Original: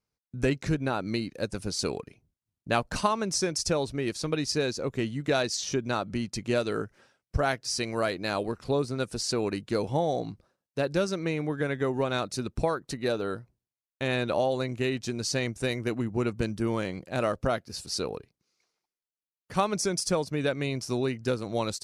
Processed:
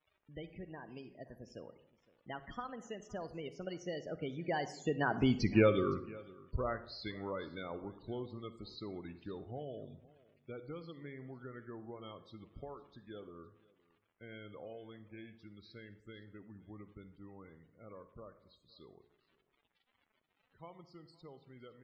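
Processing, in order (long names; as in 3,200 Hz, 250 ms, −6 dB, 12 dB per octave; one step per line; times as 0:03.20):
source passing by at 0:05.41, 52 m/s, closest 10 metres
in parallel at +2 dB: downward compressor, threshold −53 dBFS, peak gain reduction 25 dB
on the sum: surface crackle 94 per second −51 dBFS
spectral peaks only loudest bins 32
high shelf with overshoot 4,600 Hz −11 dB, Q 1.5
single-tap delay 513 ms −22.5 dB
on a send at −12.5 dB: convolution reverb RT60 0.70 s, pre-delay 43 ms
on the sum: level +3 dB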